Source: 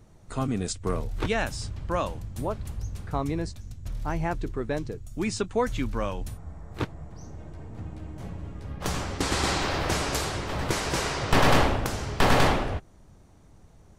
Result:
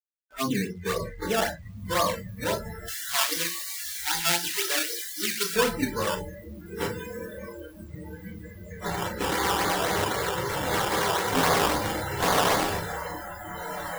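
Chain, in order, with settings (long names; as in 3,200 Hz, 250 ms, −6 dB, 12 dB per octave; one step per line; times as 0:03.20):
soft clipping −23.5 dBFS, distortion −8 dB
Chebyshev low-pass filter 2,200 Hz, order 10
rectangular room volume 210 cubic metres, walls furnished, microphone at 1.8 metres
flanger 0.38 Hz, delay 7.1 ms, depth 6.6 ms, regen +74%
sample-and-hold swept by an LFO 15×, swing 100% 3.8 Hz
high-pass filter 400 Hz 6 dB per octave
feedback delay with all-pass diffusion 1,464 ms, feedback 56%, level −8 dB
bit-depth reduction 8 bits, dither none
0:02.88–0:05.56: tilt shelving filter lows −8.5 dB, about 1,100 Hz
noise reduction from a noise print of the clip's start 26 dB
level +9 dB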